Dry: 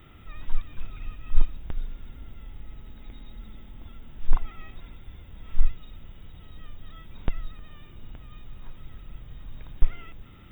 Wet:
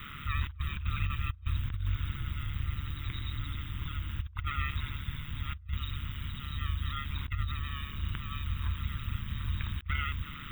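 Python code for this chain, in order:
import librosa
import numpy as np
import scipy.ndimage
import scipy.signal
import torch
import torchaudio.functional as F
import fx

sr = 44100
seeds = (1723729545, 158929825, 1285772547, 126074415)

y = fx.curve_eq(x, sr, hz=(170.0, 740.0, 1100.0), db=(0, -17, 9))
y = fx.over_compress(y, sr, threshold_db=-32.0, ratio=-1.0)
y = y * np.sin(2.0 * np.pi * 71.0 * np.arange(len(y)) / sr)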